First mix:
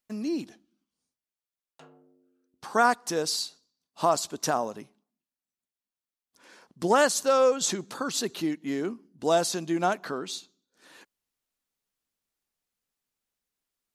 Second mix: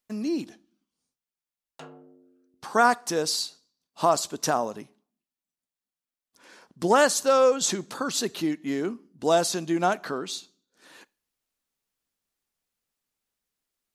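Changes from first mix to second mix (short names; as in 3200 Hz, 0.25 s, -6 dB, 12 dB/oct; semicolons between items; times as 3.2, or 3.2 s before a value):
background +8.5 dB; reverb: on, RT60 0.35 s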